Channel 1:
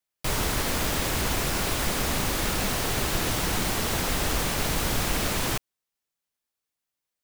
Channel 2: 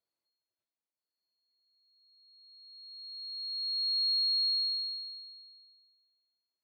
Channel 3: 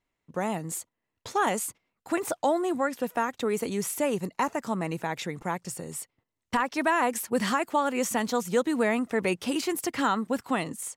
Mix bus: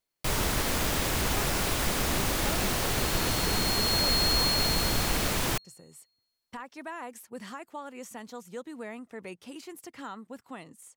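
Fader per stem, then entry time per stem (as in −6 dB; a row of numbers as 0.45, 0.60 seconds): −1.5, +1.0, −15.0 decibels; 0.00, 0.00, 0.00 seconds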